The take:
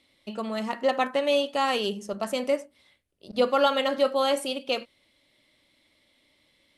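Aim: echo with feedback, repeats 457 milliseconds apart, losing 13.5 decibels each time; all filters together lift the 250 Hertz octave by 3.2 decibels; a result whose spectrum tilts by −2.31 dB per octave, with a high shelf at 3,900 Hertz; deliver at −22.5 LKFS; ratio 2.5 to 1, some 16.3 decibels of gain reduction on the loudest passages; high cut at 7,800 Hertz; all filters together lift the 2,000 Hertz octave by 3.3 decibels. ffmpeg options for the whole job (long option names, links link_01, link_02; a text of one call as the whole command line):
ffmpeg -i in.wav -af "lowpass=7800,equalizer=frequency=250:width_type=o:gain=3.5,equalizer=frequency=2000:width_type=o:gain=6,highshelf=frequency=3900:gain=-7.5,acompressor=threshold=-42dB:ratio=2.5,aecho=1:1:457|914:0.211|0.0444,volume=16.5dB" out.wav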